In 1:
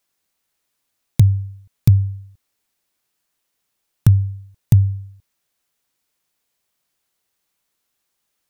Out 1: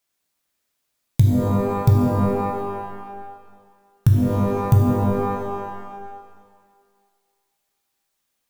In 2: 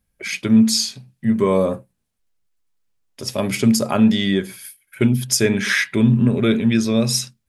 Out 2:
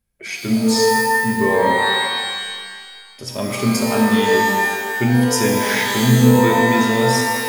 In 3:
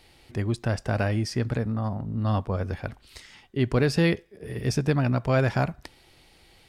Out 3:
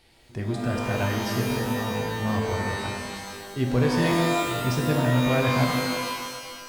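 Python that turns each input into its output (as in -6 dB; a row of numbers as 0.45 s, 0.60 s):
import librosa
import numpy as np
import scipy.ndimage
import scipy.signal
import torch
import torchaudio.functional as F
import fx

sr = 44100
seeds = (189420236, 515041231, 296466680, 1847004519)

y = fx.rev_shimmer(x, sr, seeds[0], rt60_s=1.7, semitones=12, shimmer_db=-2, drr_db=1.0)
y = y * 10.0 ** (-4.0 / 20.0)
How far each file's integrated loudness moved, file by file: -2.5 LU, +2.0 LU, +1.5 LU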